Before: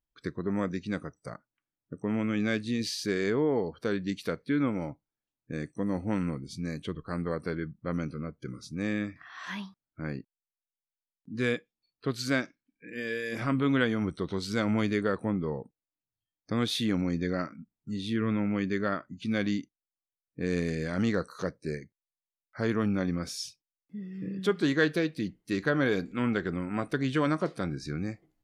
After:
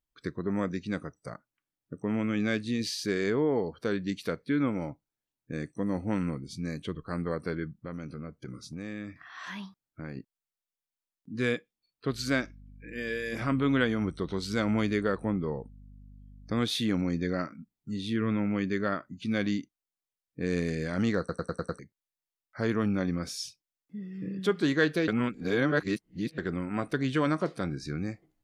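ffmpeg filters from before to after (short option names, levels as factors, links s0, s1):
-filter_complex "[0:a]asettb=1/sr,asplit=3[s0][s1][s2];[s0]atrim=end=7.834[s3];[s1]atrim=start=7.83:end=10.17,asetpts=PTS-STARTPTS,afade=t=in:d=0.004:c=qsin,afade=t=out:st=2.336:d=0.004:c=qsin,acompressor=threshold=0.0178:ratio=4:attack=3.2:release=140:knee=1:detection=peak[s4];[s2]atrim=start=10.166[s5];[s3][s4]acrossfade=d=0.004:c1=hsin:c2=qsin[s6];[s6][s5]acrossfade=d=0.004:c1=qsin:c2=hsin,asettb=1/sr,asplit=3[s7][s8][s9];[s7]atrim=end=12.104[s10];[s8]atrim=start=12.1:end=16.61,asetpts=PTS-STARTPTS,afade=t=in:d=0.004:c=qsin,afade=t=out:st=4.506:d=0.004:c=qsin,aeval=exprs='val(0)+0.00355*(sin(2*PI*50*n/s)+sin(2*PI*2*50*n/s)/2+sin(2*PI*3*50*n/s)/3+sin(2*PI*4*50*n/s)/4+sin(2*PI*5*50*n/s)/5)':c=same[s11];[s9]atrim=start=16.606[s12];[s10][s11]acrossfade=d=0.004:c1=hsin:c2=qsin[s13];[s13][s12]acrossfade=d=0.004:c1=qsin:c2=hsin,asplit=9[s14][s15][s16][s17][s18][s19][s20][s21][s22];[s14]atrim=end=21.292[s23];[s15]atrim=start=21.188:end=21.292[s24];[s16]atrim=start=21.188:end=21.292[s25];[s17]atrim=start=21.188:end=21.292[s26];[s18]atrim=start=21.188:end=21.292[s27];[s19]atrim=start=21.188:end=21.292[s28];[s20]atrim=start=21.788:end=25.082[s29];[s21]atrim=start=25.078:end=26.382,asetpts=PTS-STARTPTS,areverse[s30];[s22]atrim=start=26.378[s31];[s23][s24]acrossfade=d=0.004:c1=hsin:c2=hsin[s32];[s32][s25]acrossfade=d=0.004:c1=hsin:c2=hsin[s33];[s33][s26]acrossfade=d=0.004:c1=hsin:c2=hsin[s34];[s34][s27]acrossfade=d=0.004:c1=hsin:c2=hsin[s35];[s35][s28]acrossfade=d=0.004:c1=hsin:c2=hsin[s36];[s36][s29]acrossfade=d=0.004:c1=hsin:c2=hsin[s37];[s37][s30]acrossfade=d=0.004:c1=hsin:c2=hsin[s38];[s38][s31]acrossfade=d=0.004:c1=hsin:c2=hsin"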